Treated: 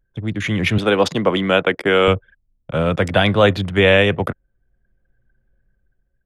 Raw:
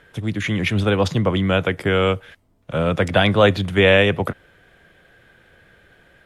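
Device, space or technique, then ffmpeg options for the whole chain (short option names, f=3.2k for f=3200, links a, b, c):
voice memo with heavy noise removal: -filter_complex "[0:a]asettb=1/sr,asplit=3[a][b][c];[a]atrim=end=0.784[d];[b]atrim=start=0.78:end=2.08,asetpts=PTS-STARTPTS,afade=t=in:d=0.004:c=qsin,afade=t=out:st=1.296:d=0.004:c=qsin,highpass=240[e];[c]atrim=start=2.076[f];[d][e]acrossfade=d=0.004:c1=hsin:c2=qsin[g];[g][f]acrossfade=d=0.004:c1=qsin:c2=hsin,anlmdn=6.31,dynaudnorm=f=120:g=11:m=6.5dB"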